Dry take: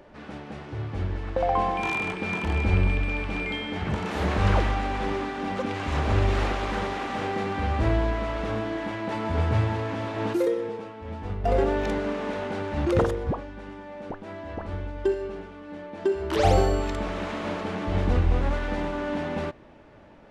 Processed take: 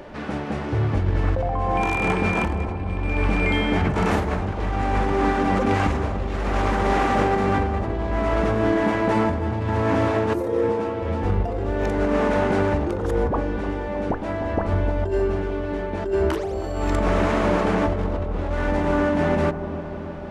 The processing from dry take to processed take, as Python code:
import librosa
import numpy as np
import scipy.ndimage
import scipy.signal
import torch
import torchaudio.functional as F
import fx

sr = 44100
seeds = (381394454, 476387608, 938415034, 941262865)

y = fx.over_compress(x, sr, threshold_db=-30.0, ratio=-1.0)
y = fx.dynamic_eq(y, sr, hz=3600.0, q=1.0, threshold_db=-50.0, ratio=4.0, max_db=-7)
y = fx.echo_wet_lowpass(y, sr, ms=305, feedback_pct=71, hz=960.0, wet_db=-9.0)
y = y * librosa.db_to_amplitude(7.5)